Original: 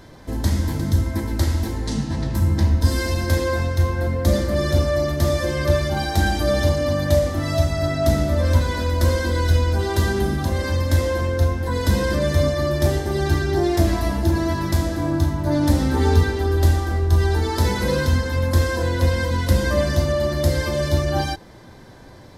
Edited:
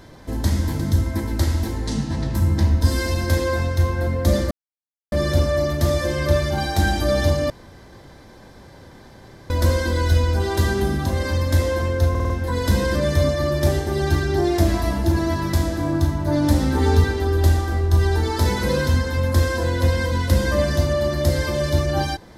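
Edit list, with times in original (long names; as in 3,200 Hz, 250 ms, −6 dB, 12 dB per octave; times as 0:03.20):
0:04.51: splice in silence 0.61 s
0:06.89–0:08.89: fill with room tone
0:11.49: stutter 0.05 s, 5 plays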